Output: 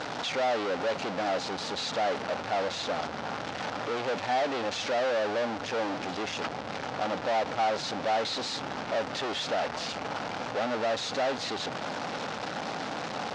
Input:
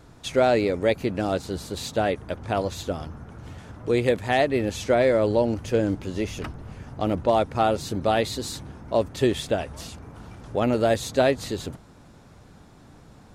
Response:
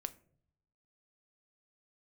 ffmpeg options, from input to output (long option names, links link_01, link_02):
-af "aeval=exprs='val(0)+0.5*0.075*sgn(val(0))':channel_layout=same,aeval=exprs='(tanh(25.1*val(0)+0.75)-tanh(0.75))/25.1':channel_layout=same,highpass=270,equalizer=frequency=360:width_type=q:width=4:gain=-6,equalizer=frequency=560:width_type=q:width=4:gain=3,equalizer=frequency=790:width_type=q:width=4:gain=6,equalizer=frequency=1400:width_type=q:width=4:gain=3,lowpass=frequency=5500:width=0.5412,lowpass=frequency=5500:width=1.3066"